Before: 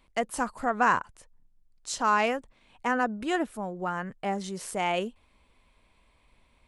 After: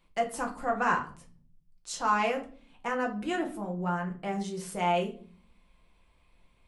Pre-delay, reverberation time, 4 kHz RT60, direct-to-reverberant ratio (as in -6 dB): 6 ms, 0.45 s, 0.35 s, 0.5 dB